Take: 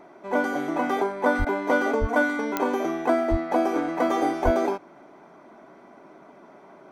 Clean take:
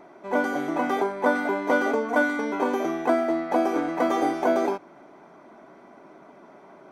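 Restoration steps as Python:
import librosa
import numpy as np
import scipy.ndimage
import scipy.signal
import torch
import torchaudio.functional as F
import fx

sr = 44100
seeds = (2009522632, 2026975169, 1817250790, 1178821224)

y = fx.fix_declick_ar(x, sr, threshold=10.0)
y = fx.fix_deplosive(y, sr, at_s=(1.38, 2.0, 3.3, 4.44))
y = fx.fix_interpolate(y, sr, at_s=(1.45,), length_ms=13.0)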